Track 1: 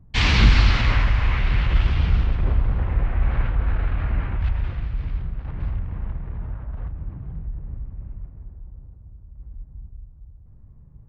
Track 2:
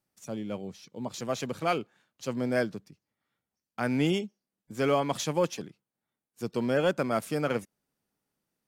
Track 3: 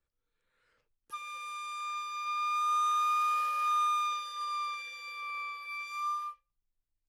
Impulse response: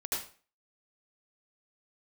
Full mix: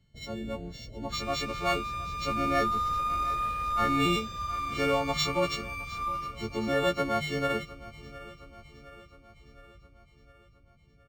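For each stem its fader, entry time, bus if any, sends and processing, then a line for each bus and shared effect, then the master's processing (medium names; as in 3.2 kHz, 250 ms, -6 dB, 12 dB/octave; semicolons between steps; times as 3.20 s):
-7.0 dB, 0.00 s, no send, echo send -8.5 dB, tilt EQ +2.5 dB/octave; compression, threshold -29 dBFS, peak gain reduction 13 dB; rippled Chebyshev low-pass 670 Hz, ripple 3 dB
-2.0 dB, 0.00 s, no send, echo send -19 dB, partials quantised in pitch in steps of 4 st
+1.5 dB, 0.00 s, no send, echo send -15.5 dB, slew-rate limiter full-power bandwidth 45 Hz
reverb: none
echo: feedback delay 713 ms, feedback 57%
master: decimation joined by straight lines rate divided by 4×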